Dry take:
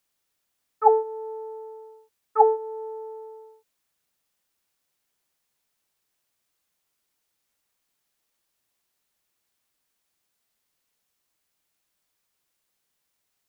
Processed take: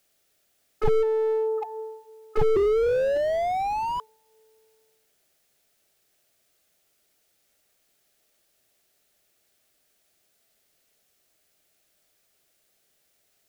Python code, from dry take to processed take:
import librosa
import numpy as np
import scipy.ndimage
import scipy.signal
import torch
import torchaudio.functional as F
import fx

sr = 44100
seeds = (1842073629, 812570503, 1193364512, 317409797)

y = fx.graphic_eq_31(x, sr, hz=(400, 630, 1000), db=(5, 8, -10))
y = fx.echo_feedback(y, sr, ms=758, feedback_pct=22, wet_db=-23.5)
y = fx.spec_paint(y, sr, seeds[0], shape='rise', start_s=2.56, length_s=1.44, low_hz=390.0, high_hz=1000.0, level_db=-18.0)
y = fx.slew_limit(y, sr, full_power_hz=17.0)
y = y * 10.0 ** (8.0 / 20.0)